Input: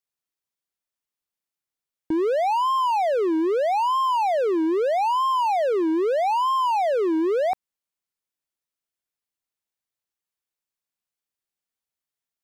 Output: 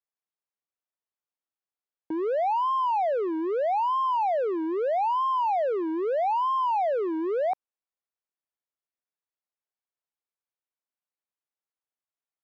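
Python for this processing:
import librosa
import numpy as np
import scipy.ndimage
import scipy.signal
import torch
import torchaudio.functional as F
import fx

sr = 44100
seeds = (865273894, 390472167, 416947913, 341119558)

y = fx.bandpass_q(x, sr, hz=770.0, q=0.63)
y = F.gain(torch.from_numpy(y), -3.0).numpy()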